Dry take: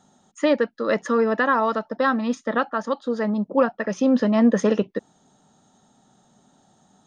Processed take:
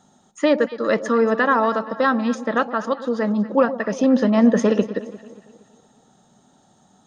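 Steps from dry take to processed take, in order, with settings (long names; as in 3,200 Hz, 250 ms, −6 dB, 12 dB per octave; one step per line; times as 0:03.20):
delay that swaps between a low-pass and a high-pass 117 ms, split 910 Hz, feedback 66%, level −12 dB
level +2 dB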